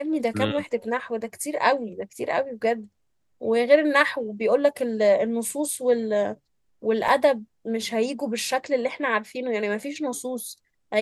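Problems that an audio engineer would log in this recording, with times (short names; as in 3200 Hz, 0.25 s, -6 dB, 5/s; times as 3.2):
7.08 gap 4.1 ms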